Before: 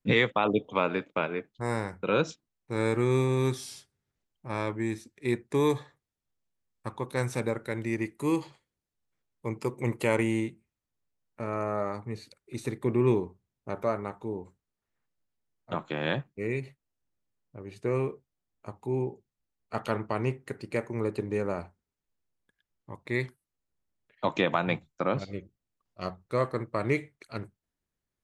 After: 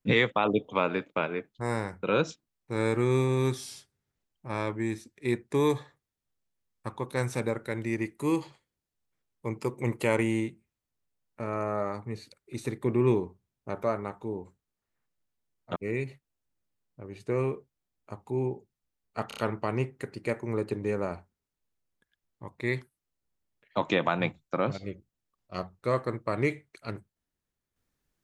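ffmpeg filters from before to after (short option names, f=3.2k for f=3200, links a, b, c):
-filter_complex "[0:a]asplit=5[a][b][c][d][e];[a]atrim=end=15.762[f];[b]atrim=start=16.318:end=19.872[g];[c]atrim=start=19.838:end=19.872[h];[d]atrim=start=19.838:end=19.872[i];[e]atrim=start=19.838[j];[f][g]acrossfade=d=0.004:c1=hsin:c2=hsin[k];[k][h]acrossfade=d=0.004:c1=hsin:c2=hsin[l];[l][i]acrossfade=d=0.004:c1=hsin:c2=hsin[m];[m][j]acrossfade=d=0.004:c1=hsin:c2=hsin"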